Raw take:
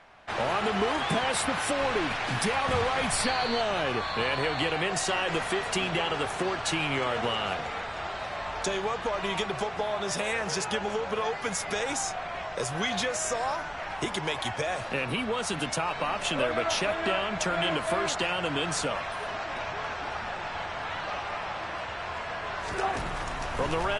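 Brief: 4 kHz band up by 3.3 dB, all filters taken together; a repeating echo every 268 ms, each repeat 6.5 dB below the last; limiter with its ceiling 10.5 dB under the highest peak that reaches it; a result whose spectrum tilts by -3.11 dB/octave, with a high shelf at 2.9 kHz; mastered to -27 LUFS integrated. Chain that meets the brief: treble shelf 2.9 kHz -5 dB; peaking EQ 4 kHz +8.5 dB; peak limiter -24.5 dBFS; feedback delay 268 ms, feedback 47%, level -6.5 dB; trim +5 dB

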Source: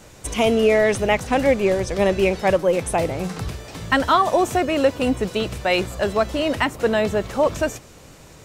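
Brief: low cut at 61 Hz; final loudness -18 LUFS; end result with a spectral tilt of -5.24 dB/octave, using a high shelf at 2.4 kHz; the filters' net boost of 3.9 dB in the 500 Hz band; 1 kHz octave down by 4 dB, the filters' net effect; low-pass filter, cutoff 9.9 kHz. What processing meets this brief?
high-pass 61 Hz; low-pass 9.9 kHz; peaking EQ 500 Hz +7.5 dB; peaking EQ 1 kHz -8.5 dB; treble shelf 2.4 kHz -7 dB

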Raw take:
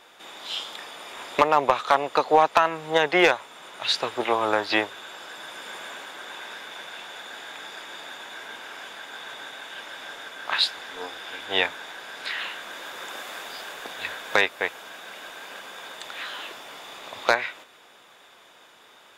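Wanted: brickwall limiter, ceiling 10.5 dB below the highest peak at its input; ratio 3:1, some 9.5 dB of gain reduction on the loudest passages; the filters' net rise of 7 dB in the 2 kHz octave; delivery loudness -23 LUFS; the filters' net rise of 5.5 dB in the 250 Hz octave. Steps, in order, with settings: peaking EQ 250 Hz +8.5 dB; peaking EQ 2 kHz +8.5 dB; compression 3:1, threshold -22 dBFS; trim +7.5 dB; peak limiter -8.5 dBFS

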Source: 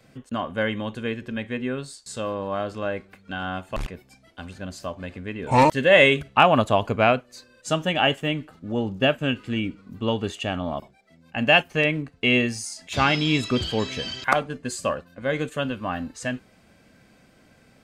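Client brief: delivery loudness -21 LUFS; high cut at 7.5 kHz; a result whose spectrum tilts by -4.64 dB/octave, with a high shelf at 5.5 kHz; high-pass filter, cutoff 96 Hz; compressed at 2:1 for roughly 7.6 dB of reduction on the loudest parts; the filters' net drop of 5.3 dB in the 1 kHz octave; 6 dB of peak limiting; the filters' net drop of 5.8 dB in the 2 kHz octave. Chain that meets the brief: high-pass 96 Hz; low-pass 7.5 kHz; peaking EQ 1 kHz -5.5 dB; peaking EQ 2 kHz -8 dB; treble shelf 5.5 kHz +6 dB; compression 2:1, threshold -28 dBFS; trim +11.5 dB; peak limiter -7.5 dBFS

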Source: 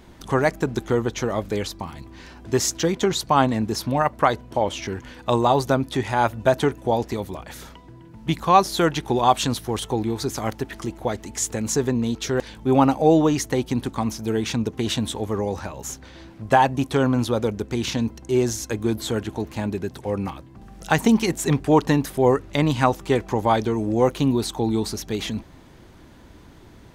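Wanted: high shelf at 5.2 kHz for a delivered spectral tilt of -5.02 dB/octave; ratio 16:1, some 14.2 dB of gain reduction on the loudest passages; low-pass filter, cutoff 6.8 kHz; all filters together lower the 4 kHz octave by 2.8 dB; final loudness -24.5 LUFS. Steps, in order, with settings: low-pass 6.8 kHz; peaking EQ 4 kHz -4.5 dB; treble shelf 5.2 kHz +3.5 dB; compression 16:1, threshold -25 dBFS; trim +7 dB

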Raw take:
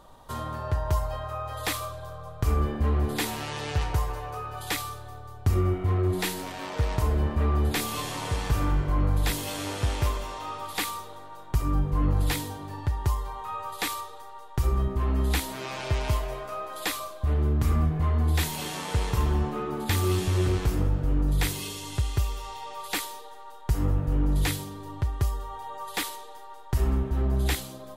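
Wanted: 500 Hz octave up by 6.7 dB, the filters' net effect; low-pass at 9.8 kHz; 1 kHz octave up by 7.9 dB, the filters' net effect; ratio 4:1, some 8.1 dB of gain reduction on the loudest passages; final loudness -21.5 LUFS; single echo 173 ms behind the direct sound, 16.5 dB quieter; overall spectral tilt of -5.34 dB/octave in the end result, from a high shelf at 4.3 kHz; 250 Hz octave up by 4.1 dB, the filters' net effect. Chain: low-pass 9.8 kHz; peaking EQ 250 Hz +3 dB; peaking EQ 500 Hz +6 dB; peaking EQ 1 kHz +8 dB; treble shelf 4.3 kHz -4 dB; compression 4:1, threshold -28 dBFS; delay 173 ms -16.5 dB; trim +10.5 dB

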